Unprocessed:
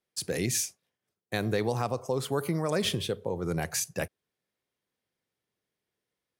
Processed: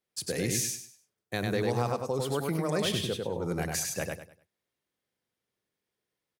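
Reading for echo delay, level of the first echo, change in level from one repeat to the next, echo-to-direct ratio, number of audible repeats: 99 ms, −3.0 dB, −11.0 dB, −2.5 dB, 3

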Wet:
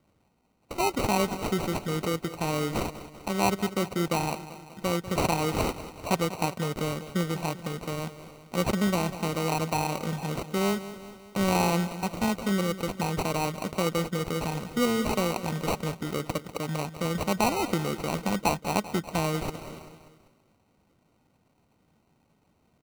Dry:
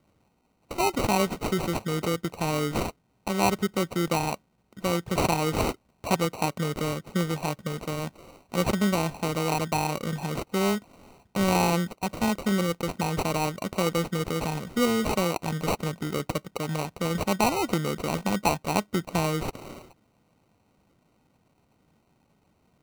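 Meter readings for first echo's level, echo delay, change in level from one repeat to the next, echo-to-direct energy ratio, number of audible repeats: −14.0 dB, 195 ms, −5.0 dB, −12.5 dB, 4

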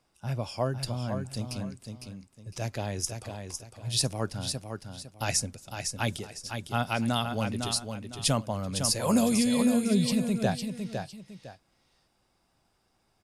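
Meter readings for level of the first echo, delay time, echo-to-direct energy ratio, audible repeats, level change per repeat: −6.5 dB, 506 ms, −6.0 dB, 2, −11.0 dB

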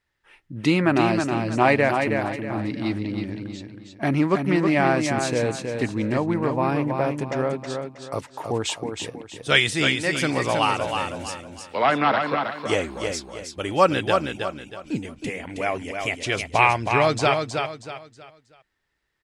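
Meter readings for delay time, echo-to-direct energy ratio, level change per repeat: 319 ms, −5.0 dB, −9.5 dB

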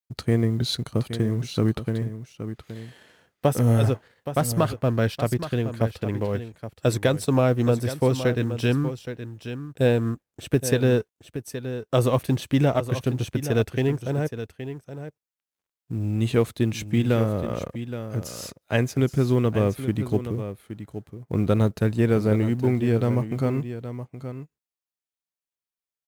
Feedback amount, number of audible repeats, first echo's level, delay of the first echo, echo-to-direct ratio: repeats not evenly spaced, 1, −11.0 dB, 821 ms, −11.0 dB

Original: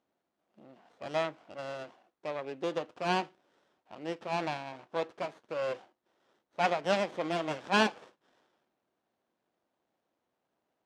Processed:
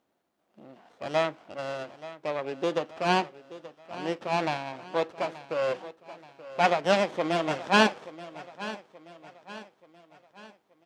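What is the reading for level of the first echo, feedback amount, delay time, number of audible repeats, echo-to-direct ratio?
−16.0 dB, 46%, 879 ms, 3, −15.0 dB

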